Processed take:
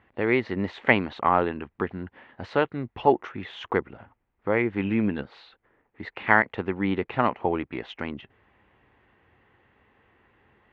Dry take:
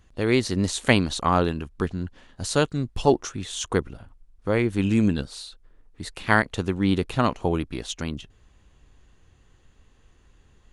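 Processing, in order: in parallel at -1.5 dB: compression, threshold -30 dBFS, peak gain reduction 17 dB; on the sum: cabinet simulation 150–2600 Hz, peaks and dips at 160 Hz -8 dB, 270 Hz -3 dB, 850 Hz +5 dB, 2 kHz +6 dB; trim -2.5 dB

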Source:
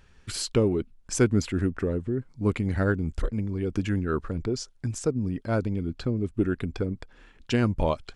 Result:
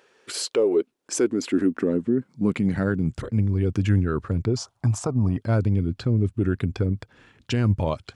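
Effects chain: 4.56–5.37 s: high-order bell 880 Hz +14.5 dB 1.2 oct; peak limiter -18.5 dBFS, peak gain reduction 8.5 dB; high-pass sweep 440 Hz -> 100 Hz, 0.69–3.51 s; trim +2.5 dB

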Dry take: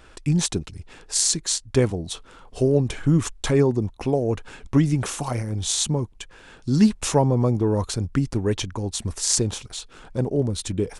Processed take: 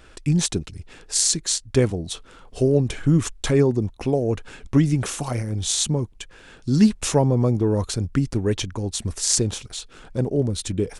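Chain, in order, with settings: peaking EQ 940 Hz -4 dB 0.74 oct; trim +1 dB

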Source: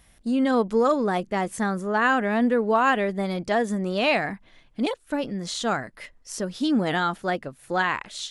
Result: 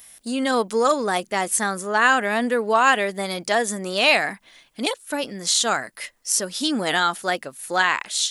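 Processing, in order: RIAA curve recording; trim +3.5 dB

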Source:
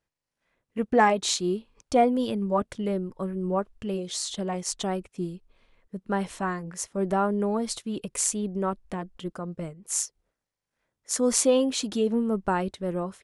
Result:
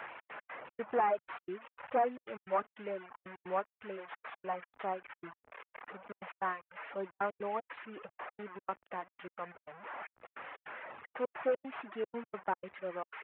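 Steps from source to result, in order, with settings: one-bit delta coder 16 kbps, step -32.5 dBFS; high-pass 170 Hz 12 dB/octave; three-band isolator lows -18 dB, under 560 Hz, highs -22 dB, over 2.2 kHz; trance gate "xx.x.xx.xx" 152 bpm -60 dB; reverb removal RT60 1.2 s; trim -1 dB

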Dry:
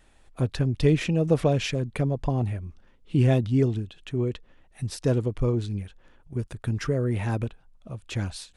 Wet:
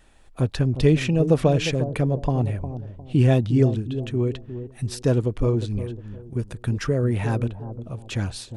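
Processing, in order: band-stop 2.1 kHz, Q 27; on a send: bucket-brigade echo 355 ms, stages 2048, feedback 30%, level -10.5 dB; on the sum: trim +3 dB

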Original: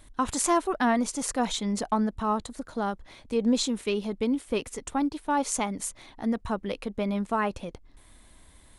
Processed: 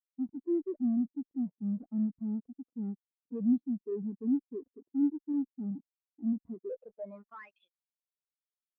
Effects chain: band-pass sweep 290 Hz -> 4.7 kHz, 6.48–7.79 s; in parallel at -6.5 dB: fuzz box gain 55 dB, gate -53 dBFS; on the sum: crackling interface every 0.71 s, samples 128, zero, from 0.36 s; spectral contrast expander 2.5:1; trim -6.5 dB

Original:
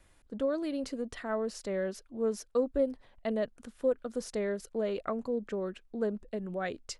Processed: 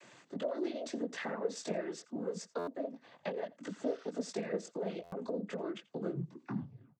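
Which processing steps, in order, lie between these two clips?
tape stop on the ending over 1.09 s; high-pass 140 Hz; in parallel at -3 dB: peak limiter -28.5 dBFS, peak gain reduction 10 dB; on the sum: compression 12:1, threshold -41 dBFS, peak gain reduction 20 dB; chorus 1.6 Hz, delay 18.5 ms, depth 2.4 ms; spectral replace 3.74–4.07 s, 850–6000 Hz before; noise-vocoded speech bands 16; on a send: delay 85 ms -22.5 dB; on the sum: buffer glitch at 2.58/5.03 s, samples 512, times 7; trim +9.5 dB

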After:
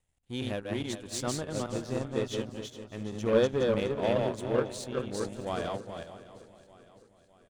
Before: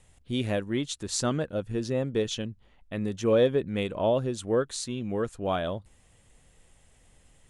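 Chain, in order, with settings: backward echo that repeats 208 ms, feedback 48%, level -2 dB; power-law waveshaper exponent 1.4; feedback delay 609 ms, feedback 51%, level -18 dB; trim -2 dB

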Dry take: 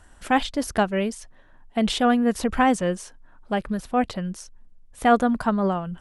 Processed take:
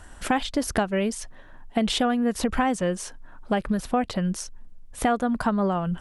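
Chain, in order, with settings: compression 6:1, threshold -27 dBFS, peak gain reduction 14.5 dB; trim +6.5 dB

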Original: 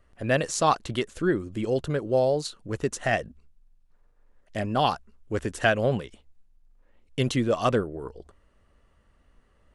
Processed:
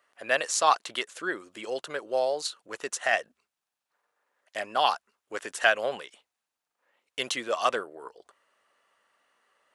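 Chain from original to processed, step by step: high-pass 770 Hz 12 dB/octave; trim +2.5 dB

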